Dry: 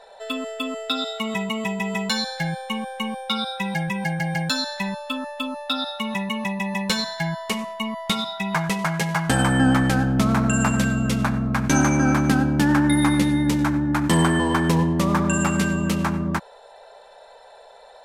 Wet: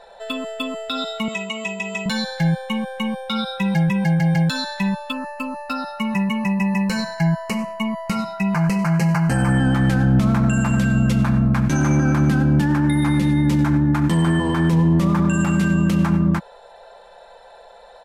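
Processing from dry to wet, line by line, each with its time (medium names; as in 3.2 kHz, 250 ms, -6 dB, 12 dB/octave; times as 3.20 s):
1.28–2.06 s: cabinet simulation 410–9000 Hz, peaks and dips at 890 Hz -7 dB, 1.7 kHz -6 dB, 2.6 kHz +5 dB, 6.9 kHz +8 dB
5.12–9.58 s: Butterworth band-stop 3.5 kHz, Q 2.8
whole clip: comb 5.8 ms, depth 33%; peak limiter -15.5 dBFS; tone controls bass +7 dB, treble -3 dB; trim +1.5 dB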